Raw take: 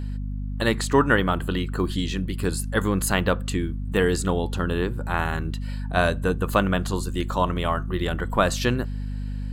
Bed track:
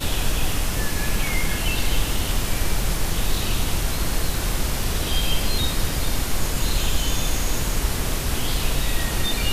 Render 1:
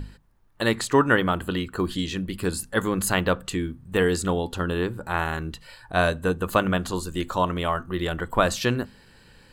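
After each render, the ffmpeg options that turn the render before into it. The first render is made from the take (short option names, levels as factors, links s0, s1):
-af "bandreject=f=50:t=h:w=6,bandreject=f=100:t=h:w=6,bandreject=f=150:t=h:w=6,bandreject=f=200:t=h:w=6,bandreject=f=250:t=h:w=6"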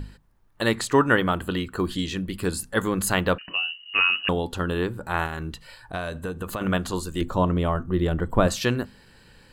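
-filter_complex "[0:a]asettb=1/sr,asplit=3[s0][s1][s2];[s0]atrim=end=3.384[s3];[s1]atrim=start=3.38:end=4.29,asetpts=PTS-STARTPTS,afade=t=in:d=0.004:c=qsin,afade=t=out:st=0.906:d=0.004:c=qsin,lowpass=f=2600:t=q:w=0.5098,lowpass=f=2600:t=q:w=0.6013,lowpass=f=2600:t=q:w=0.9,lowpass=f=2600:t=q:w=2.563,afreqshift=-3000[s4];[s2]atrim=start=4.286[s5];[s3][s4]acrossfade=d=0.004:c1=hsin:c2=qsin[s6];[s6][s5]acrossfade=d=0.004:c1=qsin:c2=hsin,asettb=1/sr,asplit=3[s7][s8][s9];[s7]atrim=end=5.264[s10];[s8]atrim=start=5.26:end=6.61,asetpts=PTS-STARTPTS,afade=t=in:d=0.004:c=qsin,afade=t=out:st=1.346:d=0.004:c=qsin,acompressor=threshold=0.0501:ratio=6:attack=3.2:release=140:knee=1:detection=peak[s11];[s9]atrim=start=6.606[s12];[s10][s11]acrossfade=d=0.004:c1=hsin:c2=qsin[s13];[s13][s12]acrossfade=d=0.004:c1=qsin:c2=hsin,asettb=1/sr,asplit=3[s14][s15][s16];[s14]atrim=end=7.214[s17];[s15]atrim=start=7.21:end=8.48,asetpts=PTS-STARTPTS,afade=t=in:d=0.004:c=qsin,afade=t=out:st=1.266:d=0.004:c=qsin,tiltshelf=f=680:g=7[s18];[s16]atrim=start=8.476[s19];[s17][s18]acrossfade=d=0.004:c1=hsin:c2=qsin[s20];[s20][s19]acrossfade=d=0.004:c1=qsin:c2=hsin"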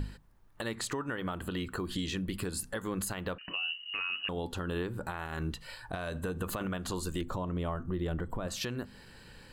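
-af "acompressor=threshold=0.0447:ratio=12,alimiter=level_in=1.06:limit=0.0631:level=0:latency=1:release=163,volume=0.944"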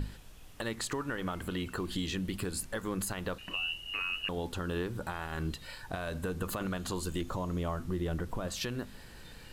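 -filter_complex "[1:a]volume=0.0266[s0];[0:a][s0]amix=inputs=2:normalize=0"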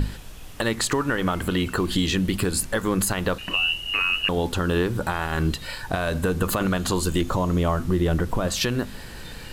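-af "volume=3.98"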